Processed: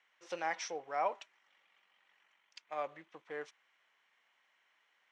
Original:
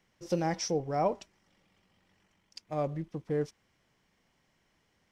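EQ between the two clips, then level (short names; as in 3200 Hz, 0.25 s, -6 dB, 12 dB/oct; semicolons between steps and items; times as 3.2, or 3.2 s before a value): HPF 1200 Hz 12 dB/oct; air absorption 130 m; bell 5000 Hz -10.5 dB 0.5 oct; +5.5 dB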